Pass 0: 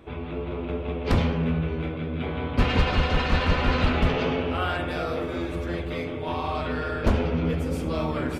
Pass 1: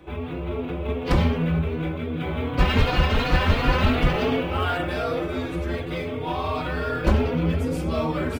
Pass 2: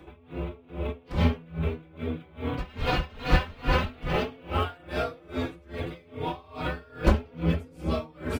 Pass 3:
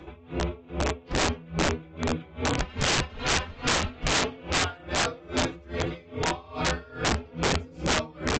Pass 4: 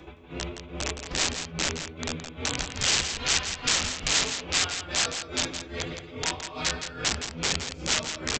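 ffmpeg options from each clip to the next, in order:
-filter_complex "[0:a]acrossover=split=270|1600[a][b][c];[c]acrusher=bits=5:mode=log:mix=0:aa=0.000001[d];[a][b][d]amix=inputs=3:normalize=0,asplit=2[e][f];[f]adelay=3.6,afreqshift=2.7[g];[e][g]amix=inputs=2:normalize=1,volume=5dB"
-af "aeval=exprs='val(0)*pow(10,-27*(0.5-0.5*cos(2*PI*2.4*n/s))/20)':c=same"
-af "alimiter=limit=-16dB:level=0:latency=1:release=284,aresample=16000,aeval=exprs='(mod(14.1*val(0)+1,2)-1)/14.1':c=same,aresample=44100,volume=4.5dB"
-filter_complex "[0:a]highshelf=f=3k:g=9,acrossover=split=1700[a][b];[a]alimiter=level_in=1.5dB:limit=-24dB:level=0:latency=1:release=24,volume=-1.5dB[c];[c][b]amix=inputs=2:normalize=0,aecho=1:1:167:0.376,volume=-2.5dB"

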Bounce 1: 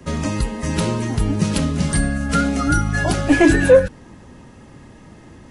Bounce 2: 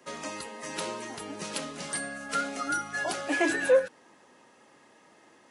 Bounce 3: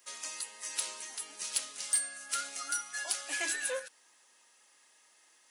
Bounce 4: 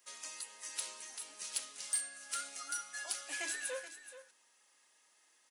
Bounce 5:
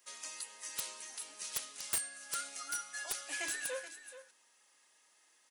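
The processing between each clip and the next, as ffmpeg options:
-af "highpass=490,volume=-8dB"
-af "aeval=exprs='0.266*(cos(1*acos(clip(val(0)/0.266,-1,1)))-cos(1*PI/2))+0.0133*(cos(4*acos(clip(val(0)/0.266,-1,1)))-cos(4*PI/2))+0.00335*(cos(7*acos(clip(val(0)/0.266,-1,1)))-cos(7*PI/2))':c=same,aderivative,volume=5.5dB"
-af "aecho=1:1:428:0.224,volume=-5.5dB"
-af "aeval=exprs='(mod(22.4*val(0)+1,2)-1)/22.4':c=same,volume=1dB"

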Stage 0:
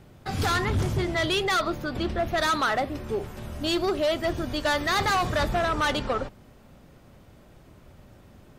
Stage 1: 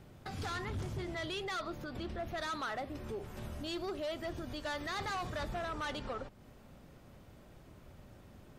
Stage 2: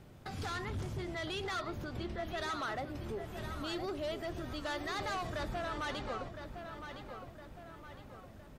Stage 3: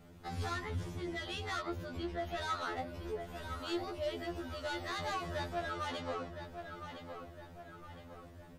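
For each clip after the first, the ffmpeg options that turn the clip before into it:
-filter_complex "[0:a]acrossover=split=9800[a][b];[b]acompressor=threshold=-53dB:ratio=4:attack=1:release=60[c];[a][c]amix=inputs=2:normalize=0,alimiter=level_in=5dB:limit=-24dB:level=0:latency=1:release=255,volume=-5dB,volume=-4.5dB"
-filter_complex "[0:a]asplit=2[a][b];[b]adelay=1012,lowpass=f=3.8k:p=1,volume=-8dB,asplit=2[c][d];[d]adelay=1012,lowpass=f=3.8k:p=1,volume=0.5,asplit=2[e][f];[f]adelay=1012,lowpass=f=3.8k:p=1,volume=0.5,asplit=2[g][h];[h]adelay=1012,lowpass=f=3.8k:p=1,volume=0.5,asplit=2[i][j];[j]adelay=1012,lowpass=f=3.8k:p=1,volume=0.5,asplit=2[k][l];[l]adelay=1012,lowpass=f=3.8k:p=1,volume=0.5[m];[a][c][e][g][i][k][m]amix=inputs=7:normalize=0"
-af "afftfilt=real='re*2*eq(mod(b,4),0)':imag='im*2*eq(mod(b,4),0)':win_size=2048:overlap=0.75,volume=1.5dB"

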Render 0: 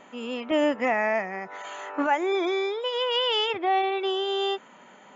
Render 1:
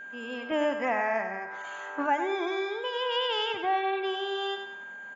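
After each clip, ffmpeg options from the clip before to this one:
-af "aecho=1:1:96|192|288|384:0.398|0.151|0.0575|0.0218,adynamicequalizer=threshold=0.01:dfrequency=1000:dqfactor=1.7:tfrequency=1000:tqfactor=1.7:attack=5:release=100:ratio=0.375:range=2.5:mode=boostabove:tftype=bell,aeval=exprs='val(0)+0.02*sin(2*PI*1600*n/s)':c=same,volume=-6dB"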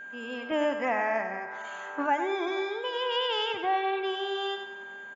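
-filter_complex "[0:a]asplit=2[a][b];[b]adelay=484,volume=-20dB,highshelf=f=4k:g=-10.9[c];[a][c]amix=inputs=2:normalize=0"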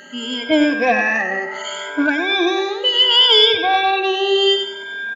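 -af "afftfilt=real='re*pow(10,22/40*sin(2*PI*(1.7*log(max(b,1)*sr/1024/100)/log(2)-(0.69)*(pts-256)/sr)))':imag='im*pow(10,22/40*sin(2*PI*(1.7*log(max(b,1)*sr/1024/100)/log(2)-(0.69)*(pts-256)/sr)))':win_size=1024:overlap=0.75,acontrast=62,equalizer=f=125:t=o:w=1:g=-6,equalizer=f=1k:t=o:w=1:g=-9,equalizer=f=4k:t=o:w=1:g=8,volume=4dB"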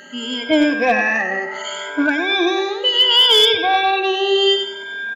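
-af "asoftclip=type=hard:threshold=-6dB"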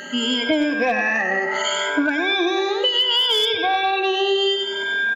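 -af "acompressor=threshold=-24dB:ratio=6,volume=6.5dB"

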